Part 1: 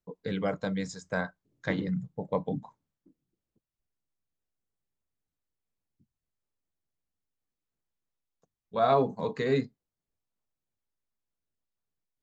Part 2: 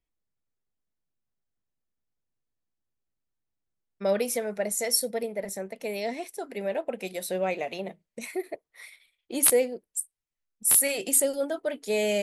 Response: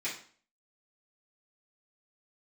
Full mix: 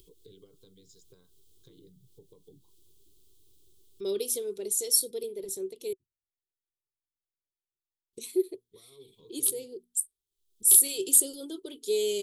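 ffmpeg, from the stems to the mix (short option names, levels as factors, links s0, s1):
-filter_complex "[0:a]alimiter=limit=0.0668:level=0:latency=1:release=345,acompressor=threshold=0.0158:ratio=6,volume=0.237,asplit=2[s0][s1];[1:a]bandreject=f=60:t=h:w=6,bandreject=f=120:t=h:w=6,bandreject=f=180:t=h:w=6,bandreject=f=240:t=h:w=6,acompressor=mode=upward:threshold=0.0126:ratio=2.5,volume=0.841,asplit=3[s2][s3][s4];[s2]atrim=end=5.93,asetpts=PTS-STARTPTS,afade=t=out:st=5.926:d=0.004:c=hsin[s5];[s3]atrim=start=5.93:end=8.13,asetpts=PTS-STARTPTS,volume=0[s6];[s4]atrim=start=8.13,asetpts=PTS-STARTPTS,afade=t=in:d=0.004:c=hsin[s7];[s5][s6][s7]concat=n=3:v=0:a=1[s8];[s1]apad=whole_len=539291[s9];[s8][s9]sidechaincompress=threshold=0.00141:ratio=8:attack=36:release=229[s10];[s0][s10]amix=inputs=2:normalize=0,firequalizer=gain_entry='entry(120,0);entry(210,-14);entry(380,9);entry(620,-25);entry(1100,-12);entry(1800,-26);entry(3300,5);entry(5300,0);entry(8400,4)':delay=0.05:min_phase=1"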